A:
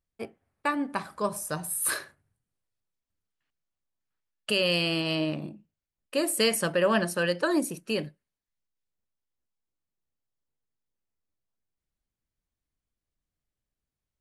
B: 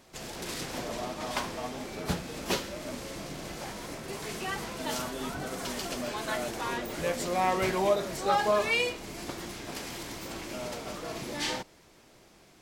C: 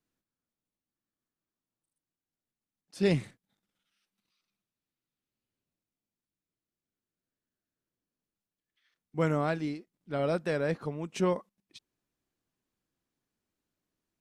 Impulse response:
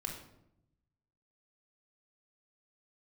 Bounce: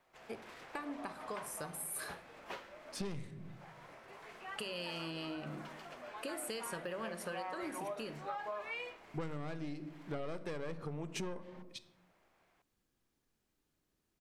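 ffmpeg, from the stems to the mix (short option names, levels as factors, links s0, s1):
-filter_complex "[0:a]acompressor=threshold=0.01:ratio=2.5,adelay=100,volume=0.562,asplit=2[s0][s1];[s1]volume=0.376[s2];[1:a]acrossover=split=550 2600:gain=0.178 1 0.126[s3][s4][s5];[s3][s4][s5]amix=inputs=3:normalize=0,volume=0.335[s6];[2:a]aeval=exprs='(tanh(25.1*val(0)+0.45)-tanh(0.45))/25.1':c=same,volume=1.33,asplit=3[s7][s8][s9];[s8]volume=0.398[s10];[s9]apad=whole_len=560919[s11];[s6][s11]sidechaincompress=threshold=0.00794:ratio=8:attack=16:release=582[s12];[3:a]atrim=start_sample=2205[s13];[s2][s10]amix=inputs=2:normalize=0[s14];[s14][s13]afir=irnorm=-1:irlink=0[s15];[s0][s12][s7][s15]amix=inputs=4:normalize=0,acompressor=threshold=0.0141:ratio=12"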